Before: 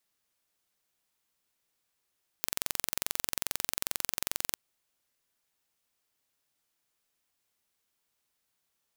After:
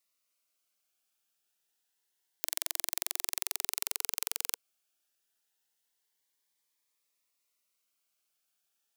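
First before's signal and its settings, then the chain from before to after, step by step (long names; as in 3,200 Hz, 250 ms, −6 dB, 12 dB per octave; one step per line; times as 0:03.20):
impulse train 22.4 per second, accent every 0, −2.5 dBFS 2.13 s
high-pass filter 560 Hz 6 dB per octave
phaser whose notches keep moving one way rising 0.27 Hz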